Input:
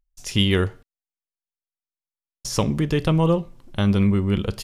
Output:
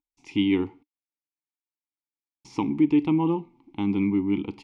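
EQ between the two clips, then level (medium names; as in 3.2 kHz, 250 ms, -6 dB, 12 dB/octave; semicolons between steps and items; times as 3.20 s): vowel filter u; low-pass 9.5 kHz; +8.5 dB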